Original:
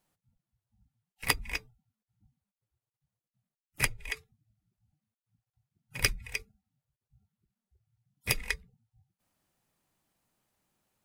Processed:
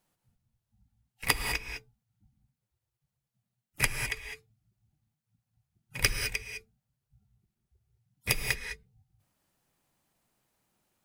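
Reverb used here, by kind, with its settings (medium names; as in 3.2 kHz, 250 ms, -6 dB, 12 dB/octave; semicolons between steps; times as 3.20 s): gated-style reverb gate 230 ms rising, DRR 5 dB; trim +1 dB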